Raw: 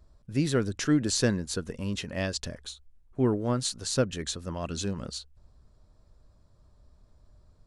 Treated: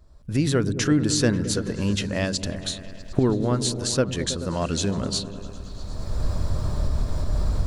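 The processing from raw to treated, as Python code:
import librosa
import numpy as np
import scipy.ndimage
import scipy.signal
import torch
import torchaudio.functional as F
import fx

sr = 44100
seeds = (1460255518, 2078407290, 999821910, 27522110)

y = fx.recorder_agc(x, sr, target_db=-19.0, rise_db_per_s=22.0, max_gain_db=30)
y = fx.echo_opening(y, sr, ms=108, hz=200, octaves=1, feedback_pct=70, wet_db=-6)
y = F.gain(torch.from_numpy(y), 3.5).numpy()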